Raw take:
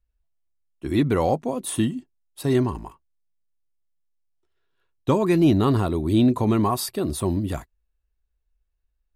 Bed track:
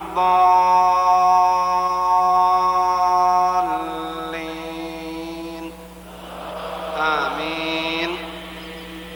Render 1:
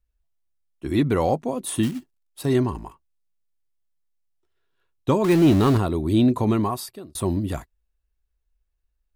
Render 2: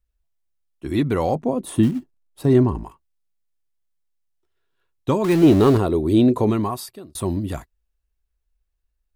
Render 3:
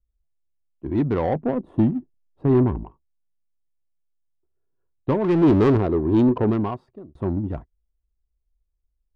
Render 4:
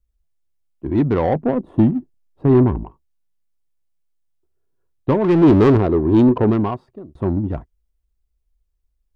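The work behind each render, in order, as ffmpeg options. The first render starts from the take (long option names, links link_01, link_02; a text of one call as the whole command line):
ffmpeg -i in.wav -filter_complex "[0:a]asplit=3[link_01][link_02][link_03];[link_01]afade=type=out:start_time=1.82:duration=0.02[link_04];[link_02]acrusher=bits=4:mode=log:mix=0:aa=0.000001,afade=type=in:start_time=1.82:duration=0.02,afade=type=out:start_time=2.44:duration=0.02[link_05];[link_03]afade=type=in:start_time=2.44:duration=0.02[link_06];[link_04][link_05][link_06]amix=inputs=3:normalize=0,asettb=1/sr,asplit=3[link_07][link_08][link_09];[link_07]atrim=end=5.244[link_10];[link_08]atrim=start=5.24:end=5.78,asetpts=PTS-STARTPTS,afade=type=in:duration=0.004:curve=qsin,afade=type=out:start_time=0.536:duration=0.004:curve=qsin,aeval=exprs='val(0)+0.5*0.0596*sgn(val(0))':channel_layout=same[link_11];[link_09]atrim=start=5.776[link_12];[link_10][link_11]acrossfade=duration=0.004:curve1=hsin:curve2=qsin[link_13];[link_13][link_12]acrossfade=duration=0.004:curve1=qsin:curve2=hsin,asplit=2[link_14][link_15];[link_14]atrim=end=7.15,asetpts=PTS-STARTPTS,afade=type=out:start_time=6.5:duration=0.65[link_16];[link_15]atrim=start=7.15,asetpts=PTS-STARTPTS,afade=type=in:duration=0.004:curve=hsin[link_17];[link_16][link_17]concat=n=2:v=0:a=1" out.wav
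ffmpeg -i in.wav -filter_complex "[0:a]asettb=1/sr,asplit=3[link_01][link_02][link_03];[link_01]atrim=end=1.354[link_04];[link_02]atrim=start=1.35:end=2.84,asetpts=PTS-STARTPTS,afade=type=in:duration=0.004:curve=qsin,afade=type=out:start_time=1.486:duration=0.004:curve=qsin,tiltshelf=frequency=1300:gain=6[link_05];[link_03]atrim=start=2.836[link_06];[link_04][link_05]acrossfade=duration=0.004:curve1=hsin:curve2=qsin[link_07];[link_07][link_06]acrossfade=duration=0.004:curve1=qsin:curve2=hsin,asettb=1/sr,asplit=3[link_08][link_09][link_10];[link_08]atrim=end=5.434[link_11];[link_09]atrim=start=5.43:end=6.5,asetpts=PTS-STARTPTS,afade=type=in:duration=0.004:curve=qsin,afade=type=out:start_time=1.066:duration=0.004:curve=qsin,equalizer=frequency=440:width=1.5:gain=8[link_12];[link_10]atrim=start=6.496[link_13];[link_11][link_12]acrossfade=duration=0.004:curve1=hsin:curve2=qsin[link_14];[link_14][link_13]acrossfade=duration=0.004:curve1=qsin:curve2=hsin" out.wav
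ffmpeg -i in.wav -af "asoftclip=type=tanh:threshold=-9.5dB,adynamicsmooth=sensitivity=0.5:basefreq=650" out.wav
ffmpeg -i in.wav -af "volume=4.5dB" out.wav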